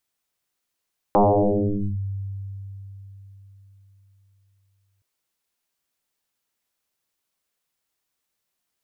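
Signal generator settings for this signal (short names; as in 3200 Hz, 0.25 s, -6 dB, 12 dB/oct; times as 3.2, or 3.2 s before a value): FM tone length 3.87 s, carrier 98.1 Hz, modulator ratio 1.04, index 8.8, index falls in 0.83 s linear, decay 4.20 s, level -12 dB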